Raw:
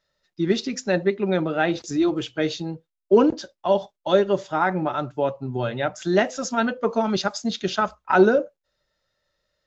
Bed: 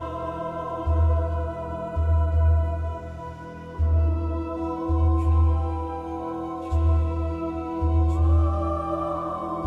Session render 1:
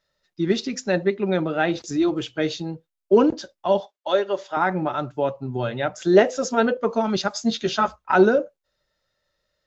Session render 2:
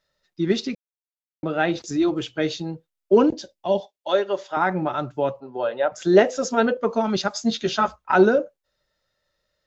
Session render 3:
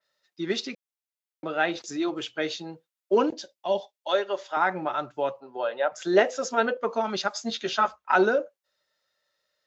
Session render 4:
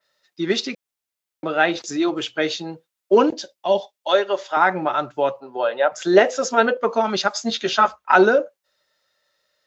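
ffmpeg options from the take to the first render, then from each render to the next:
ffmpeg -i in.wav -filter_complex "[0:a]asettb=1/sr,asplit=3[link_01][link_02][link_03];[link_01]atrim=end=3.804[link_04];[link_02]atrim=start=3.8:end=4.57,asetpts=PTS-STARTPTS,afade=type=in:duration=0.004:curve=qsin,afade=type=out:start_time=0.766:duration=0.004:curve=qsin,highpass=460,lowpass=6300[link_05];[link_03]atrim=start=4.566[link_06];[link_04][link_05]acrossfade=duration=0.004:curve1=hsin:curve2=qsin[link_07];[link_07][link_06]acrossfade=duration=0.004:curve1=qsin:curve2=hsin,asettb=1/sr,asplit=3[link_08][link_09][link_10];[link_08]atrim=end=5.964[link_11];[link_09]atrim=start=5.96:end=6.77,asetpts=PTS-STARTPTS,afade=type=in:duration=0.004:curve=qsin,afade=type=out:start_time=0.806:duration=0.004:curve=qsin,equalizer=frequency=450:width_type=o:width=0.62:gain=11[link_12];[link_10]atrim=start=6.766[link_13];[link_11][link_12]acrossfade=duration=0.004:curve1=hsin:curve2=qsin[link_14];[link_14][link_13]acrossfade=duration=0.004:curve1=qsin:curve2=hsin,asettb=1/sr,asplit=3[link_15][link_16][link_17];[link_15]atrim=end=7.344[link_18];[link_16]atrim=start=7.34:end=7.96,asetpts=PTS-STARTPTS,afade=type=in:duration=0.004:curve=qsin,afade=type=out:start_time=0.616:duration=0.004:curve=qsin,asplit=2[link_19][link_20];[link_20]adelay=13,volume=-3.5dB[link_21];[link_19][link_21]amix=inputs=2:normalize=0,atrim=end_sample=27342[link_22];[link_17]atrim=start=7.956[link_23];[link_18][link_22]acrossfade=duration=0.004:curve1=hsin:curve2=qsin[link_24];[link_24][link_23]acrossfade=duration=0.004:curve1=qsin:curve2=hsin" out.wav
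ffmpeg -i in.wav -filter_complex "[0:a]asettb=1/sr,asplit=3[link_01][link_02][link_03];[link_01]atrim=end=3.294[link_04];[link_02]atrim=start=3.29:end=4.09,asetpts=PTS-STARTPTS,afade=type=in:duration=0.004:curve=qsin,afade=type=out:start_time=0.796:duration=0.004:curve=qsin,equalizer=frequency=1300:width_type=o:width=0.88:gain=-11.5[link_05];[link_03]atrim=start=4.086[link_06];[link_04][link_05]acrossfade=duration=0.004:curve1=hsin:curve2=qsin[link_07];[link_07][link_06]acrossfade=duration=0.004:curve1=qsin:curve2=hsin,asettb=1/sr,asplit=3[link_08][link_09][link_10];[link_08]atrim=end=5.404[link_11];[link_09]atrim=start=5.4:end=5.92,asetpts=PTS-STARTPTS,afade=type=in:duration=0.004:curve=qsin,afade=type=out:start_time=0.516:duration=0.004:curve=qsin,highpass=440,equalizer=frequency=530:width_type=q:width=4:gain=9,equalizer=frequency=960:width_type=q:width=4:gain=3,equalizer=frequency=2200:width_type=q:width=4:gain=-9,equalizer=frequency=3600:width_type=q:width=4:gain=-5,lowpass=frequency=4800:width=0.5412,lowpass=frequency=4800:width=1.3066[link_12];[link_10]atrim=start=5.916[link_13];[link_11][link_12]acrossfade=duration=0.004:curve1=hsin:curve2=qsin[link_14];[link_14][link_13]acrossfade=duration=0.004:curve1=qsin:curve2=hsin,asplit=3[link_15][link_16][link_17];[link_15]atrim=end=0.75,asetpts=PTS-STARTPTS,afade=type=out:start_time=0.746:duration=0.004:curve=hsin[link_18];[link_16]atrim=start=0.75:end=1.43,asetpts=PTS-STARTPTS,volume=0[link_19];[link_17]atrim=start=1.43,asetpts=PTS-STARTPTS,afade=type=in:duration=0.004:curve=hsin[link_20];[link_18][link_19][link_20]concat=n=3:v=0:a=1" out.wav
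ffmpeg -i in.wav -af "highpass=frequency=710:poles=1,adynamicequalizer=threshold=0.00794:dfrequency=3500:dqfactor=0.7:tfrequency=3500:tqfactor=0.7:attack=5:release=100:ratio=0.375:range=2.5:mode=cutabove:tftype=highshelf" out.wav
ffmpeg -i in.wav -af "volume=7dB,alimiter=limit=-1dB:level=0:latency=1" out.wav

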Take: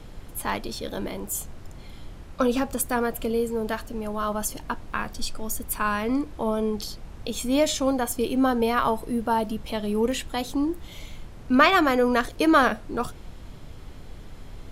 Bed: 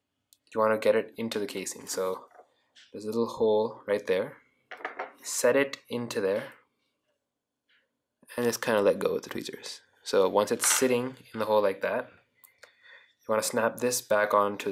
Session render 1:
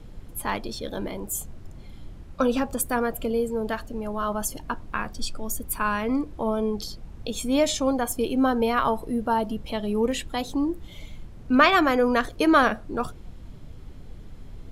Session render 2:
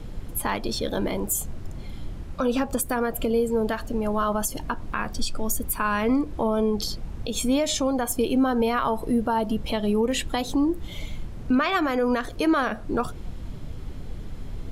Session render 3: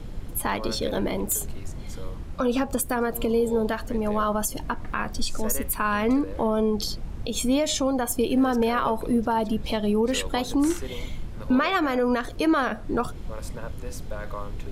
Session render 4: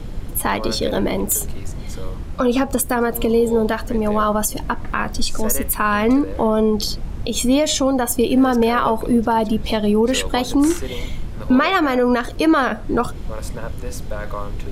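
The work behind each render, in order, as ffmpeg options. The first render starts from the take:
ffmpeg -i in.wav -af "afftdn=noise_reduction=7:noise_floor=-43" out.wav
ffmpeg -i in.wav -filter_complex "[0:a]asplit=2[link_01][link_02];[link_02]acompressor=threshold=-29dB:ratio=6,volume=1.5dB[link_03];[link_01][link_03]amix=inputs=2:normalize=0,alimiter=limit=-14dB:level=0:latency=1:release=132" out.wav
ffmpeg -i in.wav -i bed.wav -filter_complex "[1:a]volume=-13dB[link_01];[0:a][link_01]amix=inputs=2:normalize=0" out.wav
ffmpeg -i in.wav -af "volume=6.5dB" out.wav

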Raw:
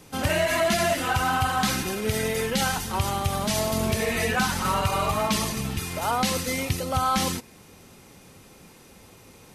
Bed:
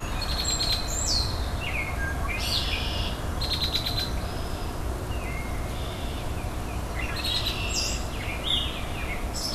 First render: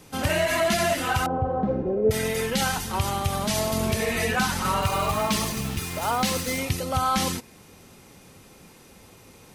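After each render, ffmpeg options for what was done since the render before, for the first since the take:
ffmpeg -i in.wav -filter_complex "[0:a]asettb=1/sr,asplit=3[link_01][link_02][link_03];[link_01]atrim=end=1.264[link_04];[link_02]atrim=start=1.26:end=2.11,asetpts=PTS-STARTPTS,afade=type=in:duration=0.004:curve=qsin,afade=type=out:start_time=0.846:duration=0.004:curve=qsin,lowpass=frequency=510:width_type=q:width=4.4[link_05];[link_03]atrim=start=2.106[link_06];[link_04][link_05]acrossfade=duration=0.004:curve1=hsin:curve2=qsin[link_07];[link_07][link_06]acrossfade=duration=0.004:curve1=qsin:curve2=hsin,asettb=1/sr,asplit=3[link_08][link_09][link_10];[link_08]atrim=end=4.824[link_11];[link_09]atrim=start=4.82:end=6.59,asetpts=PTS-STARTPTS,afade=type=in:duration=0.004:curve=qsin,afade=type=out:start_time=1.766:duration=0.004:curve=qsin,acrusher=bits=5:mix=0:aa=0.5[link_12];[link_10]atrim=start=6.586[link_13];[link_11][link_12]acrossfade=duration=0.004:curve1=hsin:curve2=qsin[link_14];[link_14][link_13]acrossfade=duration=0.004:curve1=qsin:curve2=hsin" out.wav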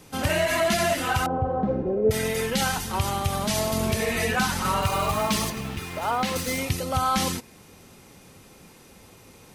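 ffmpeg -i in.wav -filter_complex "[0:a]asettb=1/sr,asplit=3[link_01][link_02][link_03];[link_01]atrim=end=5.504[link_04];[link_02]atrim=start=5.5:end=6.36,asetpts=PTS-STARTPTS,afade=type=in:duration=0.004:curve=qsin,afade=type=out:start_time=0.856:duration=0.004:curve=qsin,bass=frequency=250:gain=-4,treble=frequency=4000:gain=-9[link_05];[link_03]atrim=start=6.356[link_06];[link_04][link_05]acrossfade=duration=0.004:curve1=hsin:curve2=qsin[link_07];[link_07][link_06]acrossfade=duration=0.004:curve1=qsin:curve2=hsin" out.wav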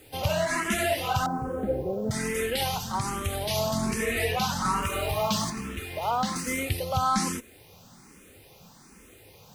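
ffmpeg -i in.wav -filter_complex "[0:a]acrusher=bits=8:mix=0:aa=0.000001,asplit=2[link_01][link_02];[link_02]afreqshift=1.2[link_03];[link_01][link_03]amix=inputs=2:normalize=1" out.wav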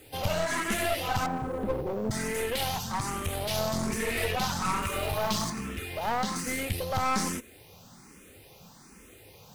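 ffmpeg -i in.wav -af "aeval=exprs='clip(val(0),-1,0.0251)':channel_layout=same" out.wav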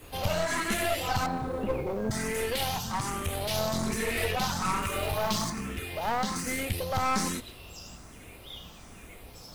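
ffmpeg -i in.wav -i bed.wav -filter_complex "[1:a]volume=-19dB[link_01];[0:a][link_01]amix=inputs=2:normalize=0" out.wav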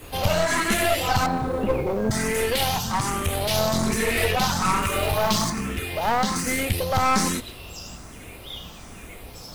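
ffmpeg -i in.wav -af "volume=7dB" out.wav

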